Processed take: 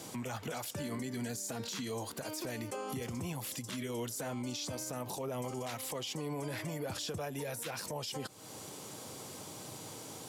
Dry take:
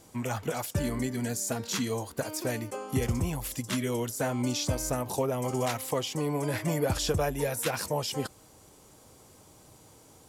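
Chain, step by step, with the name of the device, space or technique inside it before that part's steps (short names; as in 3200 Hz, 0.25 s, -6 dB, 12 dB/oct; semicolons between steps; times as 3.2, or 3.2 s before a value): broadcast voice chain (HPF 110 Hz 24 dB/oct; de-esser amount 60%; compressor 4:1, threshold -44 dBFS, peak gain reduction 17.5 dB; bell 3700 Hz +4 dB 1.3 oct; limiter -39 dBFS, peak gain reduction 9.5 dB); gain +8.5 dB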